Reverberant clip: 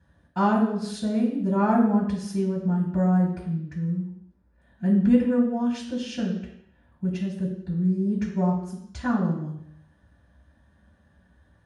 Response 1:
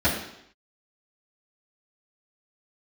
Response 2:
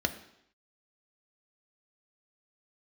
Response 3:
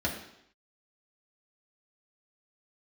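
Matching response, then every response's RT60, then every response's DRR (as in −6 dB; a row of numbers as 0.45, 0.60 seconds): 1; 0.75, 0.75, 0.75 seconds; −12.0, 6.5, −3.0 decibels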